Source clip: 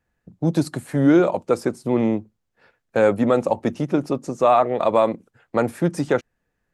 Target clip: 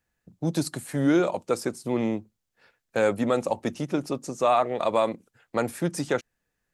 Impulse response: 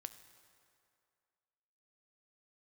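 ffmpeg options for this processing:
-af "highshelf=frequency=2500:gain=10.5,volume=-6.5dB"

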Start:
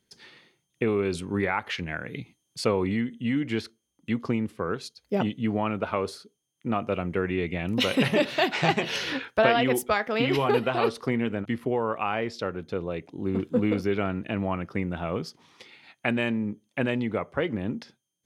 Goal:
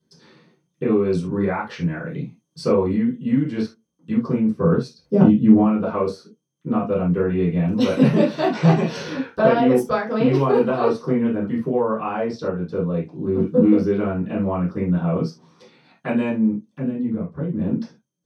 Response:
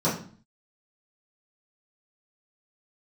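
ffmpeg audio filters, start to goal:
-filter_complex "[0:a]asettb=1/sr,asplit=3[link_01][link_02][link_03];[link_01]atrim=end=4.534[link_04];[link_02]atrim=start=4.53:end=5.63,asetpts=PTS-STARTPTS,afade=type=in:duration=0.004:curve=qsin,afade=type=out:start_time=1.096:duration=0.004:curve=qsin,lowshelf=frequency=400:gain=8[link_05];[link_03]atrim=start=5.626[link_06];[link_04][link_05]acrossfade=duration=0.004:curve1=hsin:curve2=qsin[link_07];[link_07][link_06]acrossfade=duration=0.004:curve1=qsin:curve2=hsin,asettb=1/sr,asplit=3[link_08][link_09][link_10];[link_08]atrim=end=16.664[link_11];[link_09]atrim=start=16.66:end=17.59,asetpts=PTS-STARTPTS,afade=type=in:duration=0.004:curve=qsin,afade=type=out:start_time=0.926:duration=0.004:curve=qsin,acrossover=split=320[link_12][link_13];[link_13]acompressor=threshold=-42dB:ratio=5[link_14];[link_12][link_14]amix=inputs=2:normalize=0[link_15];[link_10]atrim=start=17.586[link_16];[link_11][link_15]acrossfade=duration=0.004:curve1=hsin:curve2=qsin[link_17];[link_17][link_16]acrossfade=duration=0.004:curve1=qsin:curve2=hsin[link_18];[1:a]atrim=start_sample=2205,afade=type=out:start_time=0.13:duration=0.01,atrim=end_sample=6174[link_19];[link_18][link_19]afir=irnorm=-1:irlink=0,volume=-12dB"

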